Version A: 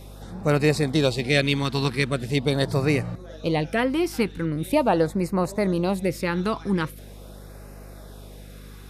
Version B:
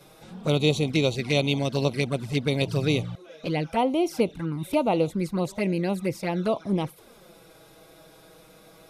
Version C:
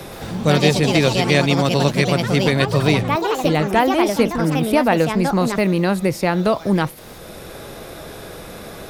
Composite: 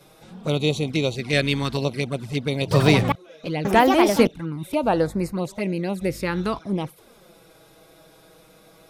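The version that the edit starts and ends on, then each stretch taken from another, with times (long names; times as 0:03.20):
B
0:01.33–0:01.77: punch in from A
0:02.71–0:03.12: punch in from C
0:03.65–0:04.27: punch in from C
0:04.83–0:05.32: punch in from A
0:06.01–0:06.59: punch in from A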